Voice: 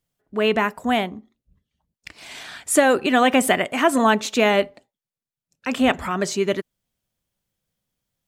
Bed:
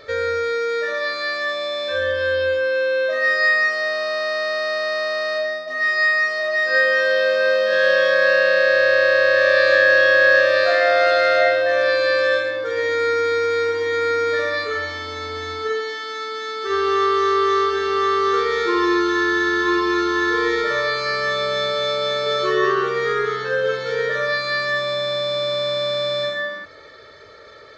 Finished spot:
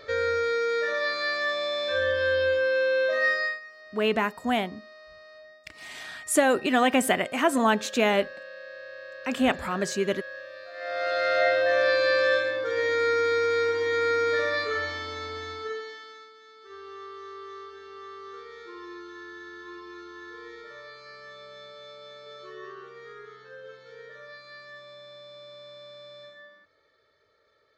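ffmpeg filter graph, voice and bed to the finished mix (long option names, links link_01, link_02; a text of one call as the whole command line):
ffmpeg -i stem1.wav -i stem2.wav -filter_complex "[0:a]adelay=3600,volume=-5dB[link_01];[1:a]volume=18dB,afade=type=out:start_time=3.22:duration=0.38:silence=0.0749894,afade=type=in:start_time=10.73:duration=0.9:silence=0.0794328,afade=type=out:start_time=14.88:duration=1.45:silence=0.105925[link_02];[link_01][link_02]amix=inputs=2:normalize=0" out.wav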